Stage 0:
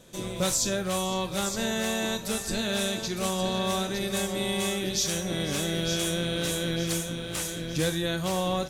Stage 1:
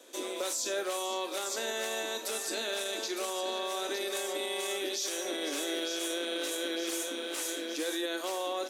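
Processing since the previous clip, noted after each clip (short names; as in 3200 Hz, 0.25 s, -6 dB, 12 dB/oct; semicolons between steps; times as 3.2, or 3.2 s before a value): steep high-pass 260 Hz 72 dB/oct; limiter -24.5 dBFS, peak gain reduction 9.5 dB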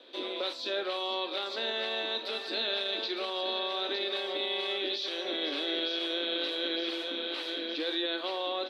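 EQ curve 2000 Hz 0 dB, 4100 Hz +7 dB, 6700 Hz -28 dB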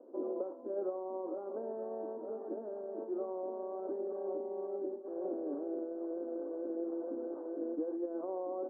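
limiter -28 dBFS, peak gain reduction 7.5 dB; Gaussian blur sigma 12 samples; gain +5 dB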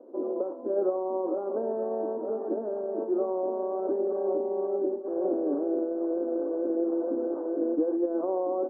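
AGC gain up to 4.5 dB; air absorption 280 m; gain +6.5 dB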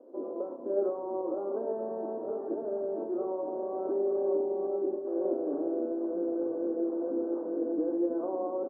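frequency-shifting echo 0.319 s, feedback 34%, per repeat -46 Hz, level -16 dB; on a send at -7 dB: reverb RT60 0.90 s, pre-delay 7 ms; on the sum: gain -4.5 dB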